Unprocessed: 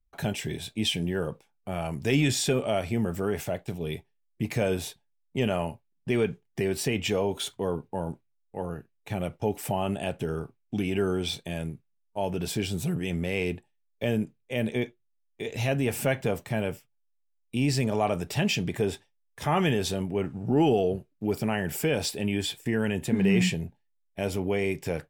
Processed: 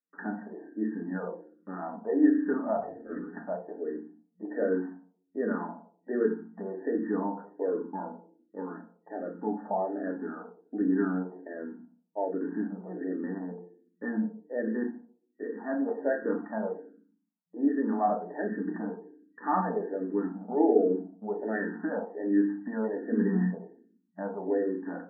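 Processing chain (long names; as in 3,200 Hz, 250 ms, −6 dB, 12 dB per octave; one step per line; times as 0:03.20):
brick-wall band-pass 180–1,900 Hz
0:02.77–0:03.39: compressor whose output falls as the input rises −40 dBFS, ratio −1
feedback delay network reverb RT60 0.49 s, low-frequency decay 1.5×, high-frequency decay 0.65×, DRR 1.5 dB
frequency shifter mixed with the dry sound −1.3 Hz
level −1.5 dB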